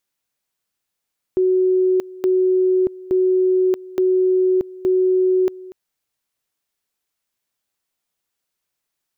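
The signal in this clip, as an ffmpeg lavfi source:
ffmpeg -f lavfi -i "aevalsrc='pow(10,(-13-20*gte(mod(t,0.87),0.63))/20)*sin(2*PI*371*t)':duration=4.35:sample_rate=44100" out.wav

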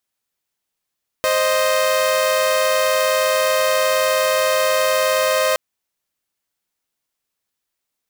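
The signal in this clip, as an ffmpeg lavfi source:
ffmpeg -f lavfi -i "aevalsrc='0.168*((2*mod(523.25*t,1)-1)+(2*mod(622.25*t,1)-1))':duration=4.32:sample_rate=44100" out.wav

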